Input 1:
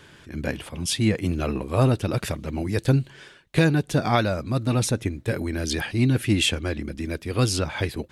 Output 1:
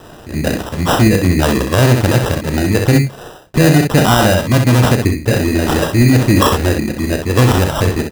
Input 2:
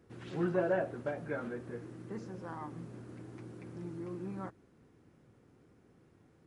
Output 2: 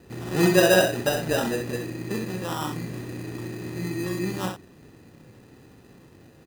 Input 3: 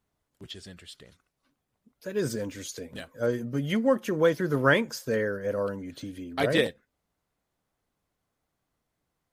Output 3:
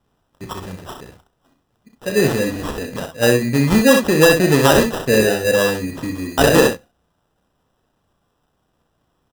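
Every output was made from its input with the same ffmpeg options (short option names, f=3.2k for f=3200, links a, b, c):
-af "acrusher=samples=20:mix=1:aa=0.000001,aecho=1:1:33|64:0.335|0.473,alimiter=level_in=13dB:limit=-1dB:release=50:level=0:latency=1,volume=-1dB"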